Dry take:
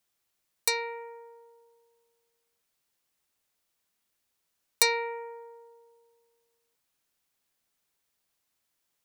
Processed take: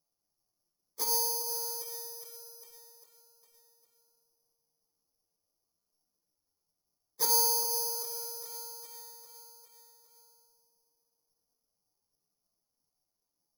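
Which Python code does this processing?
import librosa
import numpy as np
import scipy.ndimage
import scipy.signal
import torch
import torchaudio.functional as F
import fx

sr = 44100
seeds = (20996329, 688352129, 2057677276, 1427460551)

y = fx.wiener(x, sr, points=25)
y = fx.echo_feedback(y, sr, ms=270, feedback_pct=57, wet_db=-10.5)
y = fx.env_lowpass_down(y, sr, base_hz=860.0, full_db=-31.0)
y = scipy.signal.sosfilt(scipy.signal.butter(4, 1500.0, 'lowpass', fs=sr, output='sos'), y)
y = fx.room_shoebox(y, sr, seeds[0], volume_m3=33.0, walls='mixed', distance_m=0.42)
y = fx.stretch_vocoder_free(y, sr, factor=1.5)
y = (np.kron(y[::8], np.eye(8)[0]) * 8)[:len(y)]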